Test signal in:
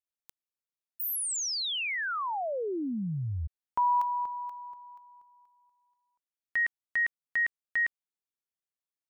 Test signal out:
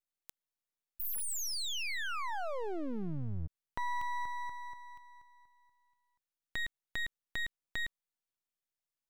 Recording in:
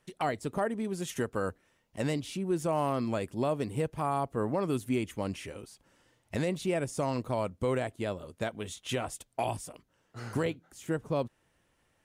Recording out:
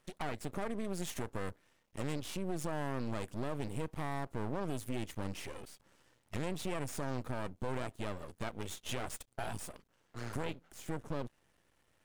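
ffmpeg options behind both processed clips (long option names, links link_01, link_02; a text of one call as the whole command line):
ffmpeg -i in.wav -af "acompressor=threshold=-33dB:ratio=6:attack=3.1:release=30:knee=6,aeval=exprs='max(val(0),0)':channel_layout=same,volume=2.5dB" out.wav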